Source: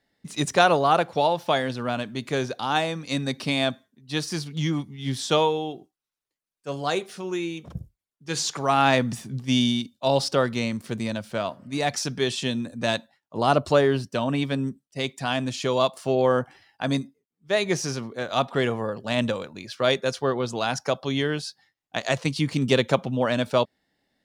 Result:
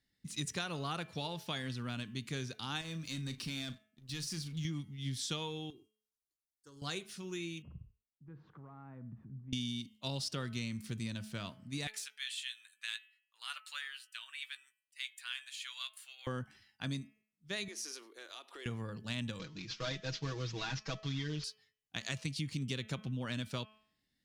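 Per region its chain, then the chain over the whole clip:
2.81–4.65 sample leveller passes 2 + compressor 2:1, threshold -38 dBFS + doubler 37 ms -13 dB
5.7–6.82 compressor, threshold -35 dBFS + fixed phaser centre 660 Hz, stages 6
7.62–9.53 LPF 1200 Hz 24 dB/oct + compressor 2.5:1, threshold -43 dBFS + echo 86 ms -22.5 dB
11.87–16.27 HPF 1500 Hz 24 dB/oct + bell 5500 Hz -14 dB 0.62 oct + doubler 17 ms -12.5 dB
17.68–18.66 elliptic high-pass 330 Hz, stop band 50 dB + compressor 5:1, threshold -33 dBFS + bell 11000 Hz +8.5 dB 0.45 oct
19.39–21.44 CVSD 32 kbps + comb 6.3 ms, depth 94%
whole clip: passive tone stack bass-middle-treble 6-0-2; de-hum 215.6 Hz, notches 15; compressor, threshold -44 dBFS; gain +9.5 dB

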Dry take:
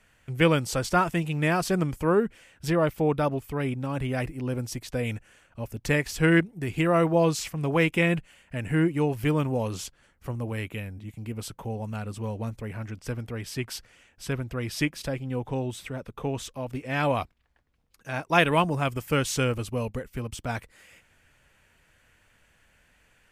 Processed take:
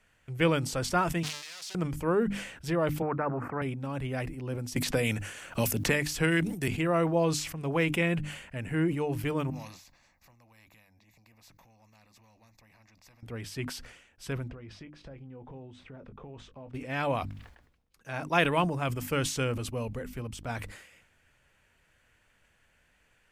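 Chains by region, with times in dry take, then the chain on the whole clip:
1.23–1.75 infinite clipping + band-pass 5000 Hz, Q 1.2 + compressor, threshold -33 dBFS
3.02–3.62 elliptic band-pass 120–1400 Hz + spectral compressor 2:1
4.76–6.68 high shelf 2900 Hz +9 dB + three-band squash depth 100%
9.5–13.23 fixed phaser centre 2100 Hz, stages 8 + compressor 2.5:1, threshold -51 dBFS + spectral compressor 2:1
14.48–16.74 compressor 8:1, threshold -36 dBFS + tape spacing loss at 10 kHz 28 dB + doubler 20 ms -11.5 dB
whole clip: high shelf 9700 Hz -3.5 dB; notches 50/100/150/200/250/300 Hz; sustainer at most 70 dB/s; gain -4.5 dB

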